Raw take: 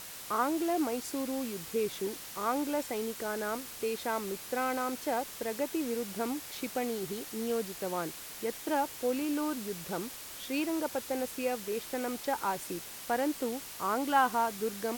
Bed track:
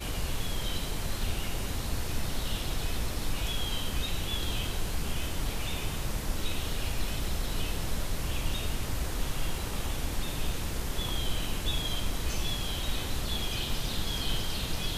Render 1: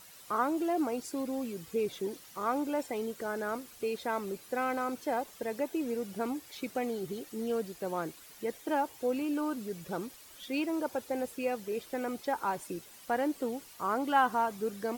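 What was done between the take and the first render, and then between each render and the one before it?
noise reduction 11 dB, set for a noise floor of -45 dBFS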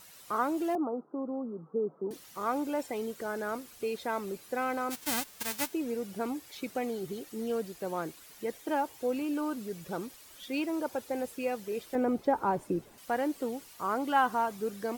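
0.75–2.11 s: Chebyshev band-pass 150–1300 Hz, order 5; 4.90–5.72 s: formants flattened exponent 0.1; 11.95–12.98 s: tilt shelf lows +9 dB, about 1.3 kHz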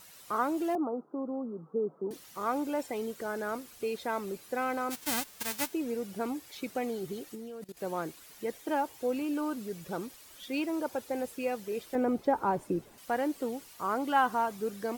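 7.35–7.77 s: level held to a coarse grid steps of 21 dB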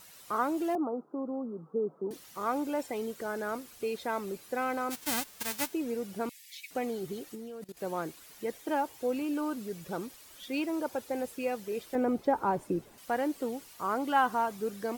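6.29–6.71 s: steep high-pass 1.8 kHz 96 dB/octave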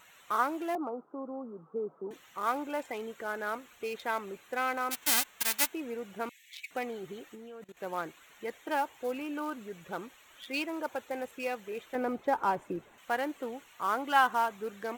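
local Wiener filter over 9 samples; tilt shelf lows -7.5 dB, about 770 Hz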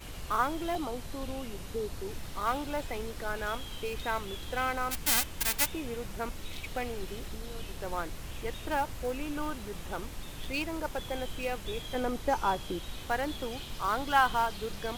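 add bed track -9.5 dB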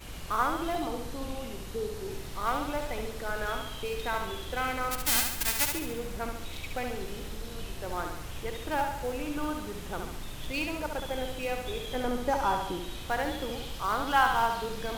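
flutter echo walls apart 11.9 m, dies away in 0.76 s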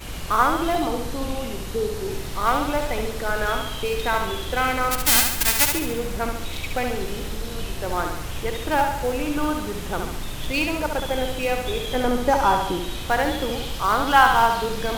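trim +9 dB

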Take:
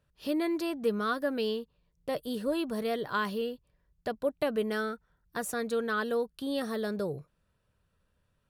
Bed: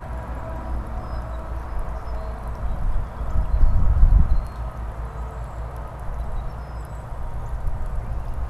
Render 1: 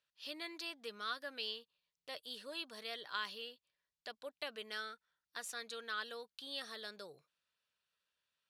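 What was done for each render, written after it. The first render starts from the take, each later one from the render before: band-pass filter 3.9 kHz, Q 1.1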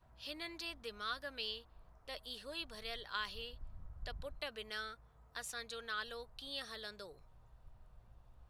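add bed -33.5 dB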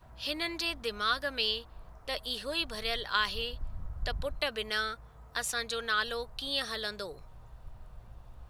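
trim +11.5 dB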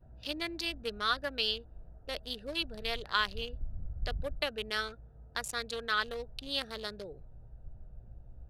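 local Wiener filter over 41 samples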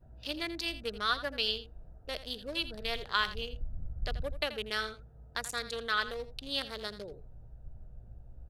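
delay 83 ms -13.5 dB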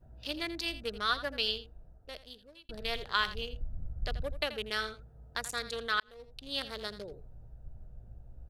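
1.43–2.69 s: fade out; 6.00–6.67 s: fade in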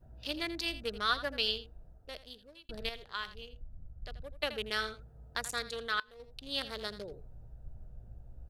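2.89–4.43 s: gain -9.5 dB; 5.63–6.20 s: feedback comb 150 Hz, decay 0.18 s, mix 30%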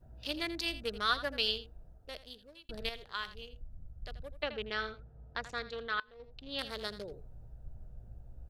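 4.42–6.59 s: distance through air 200 m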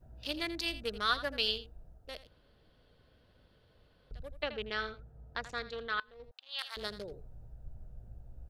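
2.27–4.11 s: room tone; 6.31–6.77 s: high-pass 860 Hz 24 dB/octave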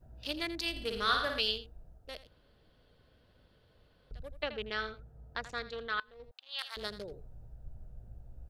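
0.71–1.40 s: flutter echo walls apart 9.3 m, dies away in 0.71 s

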